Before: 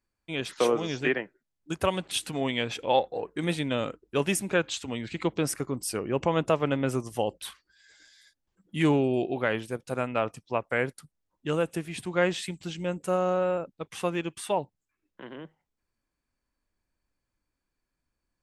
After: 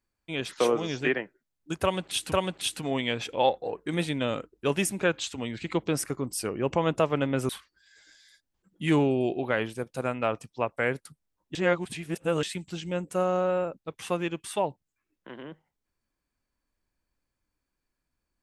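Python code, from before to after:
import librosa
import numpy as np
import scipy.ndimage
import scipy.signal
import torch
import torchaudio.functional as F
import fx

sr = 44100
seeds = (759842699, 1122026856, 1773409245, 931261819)

y = fx.edit(x, sr, fx.repeat(start_s=1.82, length_s=0.5, count=2),
    fx.cut(start_s=6.99, length_s=0.43),
    fx.reverse_span(start_s=11.48, length_s=0.88), tone=tone)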